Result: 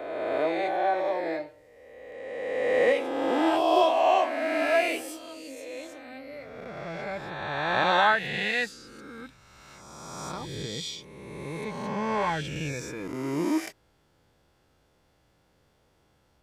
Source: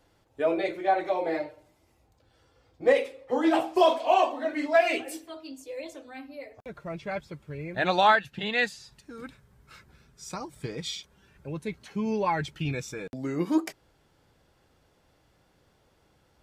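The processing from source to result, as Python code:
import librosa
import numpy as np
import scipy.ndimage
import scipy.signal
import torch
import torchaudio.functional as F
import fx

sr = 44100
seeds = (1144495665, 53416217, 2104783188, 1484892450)

y = fx.spec_swells(x, sr, rise_s=1.98)
y = y * 10.0 ** (-4.5 / 20.0)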